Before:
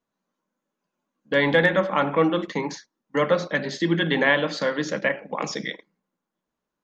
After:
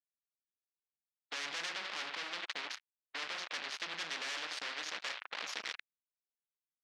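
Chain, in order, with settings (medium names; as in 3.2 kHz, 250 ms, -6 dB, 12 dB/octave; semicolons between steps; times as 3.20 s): coarse spectral quantiser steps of 15 dB; valve stage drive 28 dB, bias 0.8; crossover distortion -40.5 dBFS; Butterworth band-pass 2.2 kHz, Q 1.4; spectrum-flattening compressor 4:1; trim +6.5 dB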